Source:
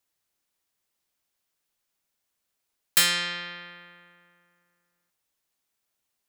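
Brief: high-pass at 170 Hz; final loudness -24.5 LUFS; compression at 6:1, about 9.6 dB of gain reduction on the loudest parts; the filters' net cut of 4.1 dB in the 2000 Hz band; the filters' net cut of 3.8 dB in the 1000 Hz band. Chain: HPF 170 Hz; bell 1000 Hz -3.5 dB; bell 2000 Hz -4 dB; compressor 6:1, threshold -26 dBFS; gain +7.5 dB

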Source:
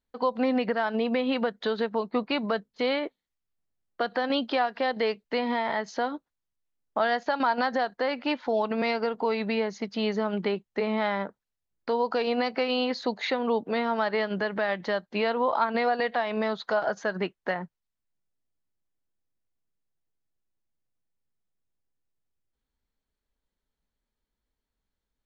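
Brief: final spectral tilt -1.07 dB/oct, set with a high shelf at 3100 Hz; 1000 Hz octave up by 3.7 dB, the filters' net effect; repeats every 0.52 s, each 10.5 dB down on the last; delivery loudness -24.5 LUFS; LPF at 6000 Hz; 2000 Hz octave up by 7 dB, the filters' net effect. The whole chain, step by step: LPF 6000 Hz; bell 1000 Hz +3 dB; bell 2000 Hz +5.5 dB; high shelf 3100 Hz +6.5 dB; feedback echo 0.52 s, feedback 30%, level -10.5 dB

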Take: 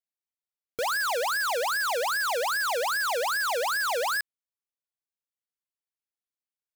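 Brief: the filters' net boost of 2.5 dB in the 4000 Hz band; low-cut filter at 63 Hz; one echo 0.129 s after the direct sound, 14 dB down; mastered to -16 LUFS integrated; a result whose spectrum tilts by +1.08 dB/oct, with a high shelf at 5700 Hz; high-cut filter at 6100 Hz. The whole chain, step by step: HPF 63 Hz; LPF 6100 Hz; bell 4000 Hz +7 dB; high shelf 5700 Hz -7.5 dB; echo 0.129 s -14 dB; gain +10 dB

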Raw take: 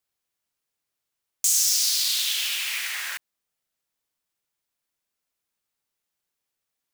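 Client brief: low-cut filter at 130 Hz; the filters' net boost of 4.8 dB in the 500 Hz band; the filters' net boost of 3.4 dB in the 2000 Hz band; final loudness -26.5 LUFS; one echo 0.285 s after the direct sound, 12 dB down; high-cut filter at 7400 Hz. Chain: HPF 130 Hz; LPF 7400 Hz; bell 500 Hz +6 dB; bell 2000 Hz +4 dB; echo 0.285 s -12 dB; gain -3.5 dB

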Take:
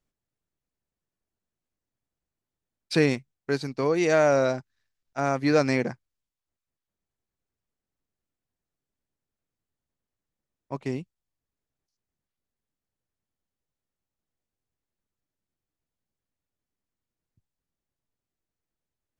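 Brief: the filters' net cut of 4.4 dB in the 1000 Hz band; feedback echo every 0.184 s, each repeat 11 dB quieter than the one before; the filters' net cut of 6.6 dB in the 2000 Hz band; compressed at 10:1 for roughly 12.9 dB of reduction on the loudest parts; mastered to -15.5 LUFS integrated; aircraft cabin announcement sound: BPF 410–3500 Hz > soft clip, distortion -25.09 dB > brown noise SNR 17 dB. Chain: bell 1000 Hz -4.5 dB; bell 2000 Hz -6.5 dB; compressor 10:1, threshold -30 dBFS; BPF 410–3500 Hz; feedback echo 0.184 s, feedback 28%, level -11 dB; soft clip -24.5 dBFS; brown noise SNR 17 dB; gain +24.5 dB

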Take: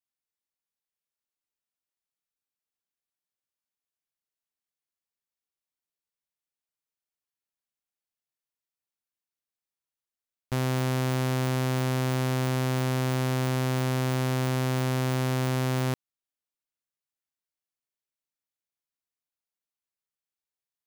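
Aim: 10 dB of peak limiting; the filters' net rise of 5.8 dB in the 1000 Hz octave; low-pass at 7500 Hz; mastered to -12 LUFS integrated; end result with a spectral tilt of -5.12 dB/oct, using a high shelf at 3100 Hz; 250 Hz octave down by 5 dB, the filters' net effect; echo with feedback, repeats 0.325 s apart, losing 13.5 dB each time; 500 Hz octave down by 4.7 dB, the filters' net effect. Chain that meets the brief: LPF 7500 Hz; bell 250 Hz -5 dB; bell 500 Hz -7.5 dB; bell 1000 Hz +9 dB; high shelf 3100 Hz +4.5 dB; limiter -26 dBFS; feedback echo 0.325 s, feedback 21%, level -13.5 dB; gain +25 dB

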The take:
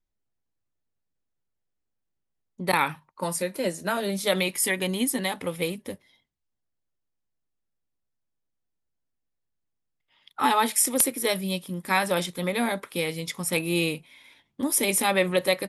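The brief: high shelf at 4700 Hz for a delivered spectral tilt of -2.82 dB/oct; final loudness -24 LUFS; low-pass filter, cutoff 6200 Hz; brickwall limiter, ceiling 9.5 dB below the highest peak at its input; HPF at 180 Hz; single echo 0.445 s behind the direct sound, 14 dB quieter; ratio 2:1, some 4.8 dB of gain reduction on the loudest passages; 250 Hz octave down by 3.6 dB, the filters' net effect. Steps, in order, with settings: HPF 180 Hz; LPF 6200 Hz; bell 250 Hz -3 dB; high shelf 4700 Hz +6 dB; compressor 2:1, threshold -26 dBFS; limiter -20.5 dBFS; echo 0.445 s -14 dB; gain +8 dB

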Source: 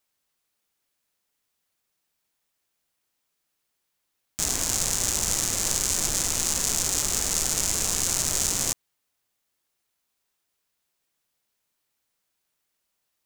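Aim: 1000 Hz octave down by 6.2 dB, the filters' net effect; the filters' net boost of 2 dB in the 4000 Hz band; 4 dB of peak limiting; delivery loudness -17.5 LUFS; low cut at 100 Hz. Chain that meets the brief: HPF 100 Hz; bell 1000 Hz -8.5 dB; bell 4000 Hz +3 dB; gain +7 dB; limiter -0.5 dBFS

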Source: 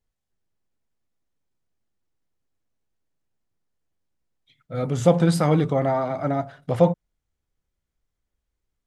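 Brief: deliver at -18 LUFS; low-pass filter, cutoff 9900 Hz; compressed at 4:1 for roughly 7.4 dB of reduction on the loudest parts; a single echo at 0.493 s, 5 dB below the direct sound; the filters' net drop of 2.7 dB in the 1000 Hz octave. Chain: LPF 9900 Hz; bell 1000 Hz -4 dB; compressor 4:1, threshold -20 dBFS; echo 0.493 s -5 dB; gain +8 dB

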